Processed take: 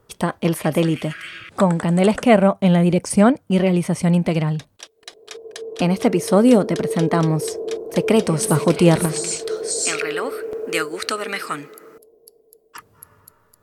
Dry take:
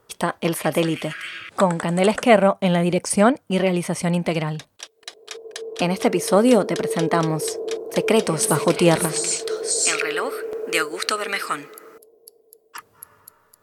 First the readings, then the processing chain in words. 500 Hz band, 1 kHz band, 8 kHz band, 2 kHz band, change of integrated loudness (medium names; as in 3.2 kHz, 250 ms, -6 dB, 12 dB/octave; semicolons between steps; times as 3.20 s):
+0.5 dB, -1.0 dB, -2.0 dB, -2.0 dB, +2.0 dB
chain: bass shelf 280 Hz +10.5 dB; trim -2 dB